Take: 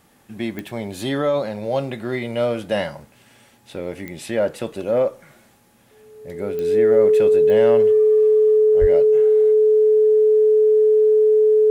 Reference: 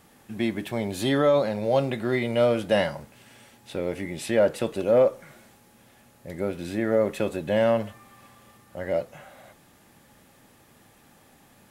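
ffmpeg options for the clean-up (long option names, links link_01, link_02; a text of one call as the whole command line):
ffmpeg -i in.wav -filter_complex "[0:a]adeclick=threshold=4,bandreject=frequency=430:width=30,asplit=3[link_01][link_02][link_03];[link_01]afade=type=out:start_time=8.8:duration=0.02[link_04];[link_02]highpass=frequency=140:width=0.5412,highpass=frequency=140:width=1.3066,afade=type=in:start_time=8.8:duration=0.02,afade=type=out:start_time=8.92:duration=0.02[link_05];[link_03]afade=type=in:start_time=8.92:duration=0.02[link_06];[link_04][link_05][link_06]amix=inputs=3:normalize=0" out.wav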